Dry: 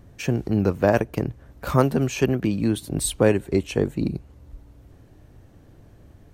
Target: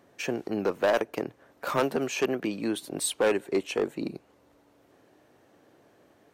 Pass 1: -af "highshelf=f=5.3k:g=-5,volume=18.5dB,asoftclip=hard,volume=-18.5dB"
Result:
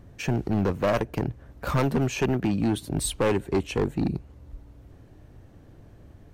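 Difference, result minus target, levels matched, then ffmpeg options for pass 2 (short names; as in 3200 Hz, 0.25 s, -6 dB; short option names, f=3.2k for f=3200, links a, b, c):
500 Hz band -3.0 dB
-af "highpass=390,highshelf=f=5.3k:g=-5,volume=18.5dB,asoftclip=hard,volume=-18.5dB"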